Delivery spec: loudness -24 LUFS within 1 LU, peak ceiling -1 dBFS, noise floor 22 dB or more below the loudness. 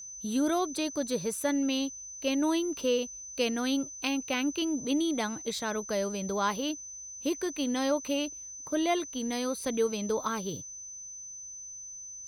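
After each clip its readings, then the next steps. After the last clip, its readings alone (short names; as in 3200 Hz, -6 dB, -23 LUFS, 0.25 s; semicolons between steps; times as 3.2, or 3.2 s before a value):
steady tone 6100 Hz; tone level -41 dBFS; loudness -31.5 LUFS; peak -16.0 dBFS; loudness target -24.0 LUFS
-> notch 6100 Hz, Q 30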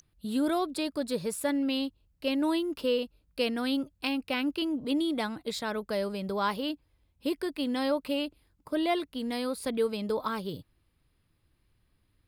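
steady tone none; loudness -31.0 LUFS; peak -15.5 dBFS; loudness target -24.0 LUFS
-> gain +7 dB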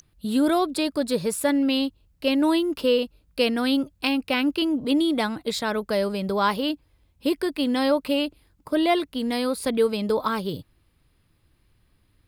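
loudness -24.0 LUFS; peak -8.5 dBFS; noise floor -65 dBFS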